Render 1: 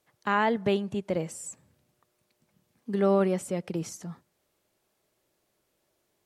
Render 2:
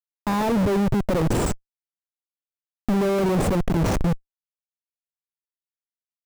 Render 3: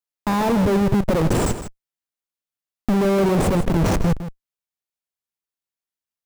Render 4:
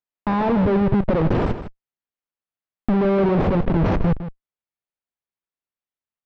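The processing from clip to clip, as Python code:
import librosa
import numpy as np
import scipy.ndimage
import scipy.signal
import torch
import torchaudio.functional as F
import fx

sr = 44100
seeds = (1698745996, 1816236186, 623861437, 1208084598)

y1 = fx.schmitt(x, sr, flips_db=-38.5)
y1 = fx.tilt_shelf(y1, sr, db=6.0, hz=1300.0)
y1 = y1 * 10.0 ** (7.0 / 20.0)
y2 = y1 + 10.0 ** (-11.5 / 20.0) * np.pad(y1, (int(158 * sr / 1000.0), 0))[:len(y1)]
y2 = y2 * 10.0 ** (2.5 / 20.0)
y3 = scipy.ndimage.gaussian_filter1d(y2, 2.6, mode='constant')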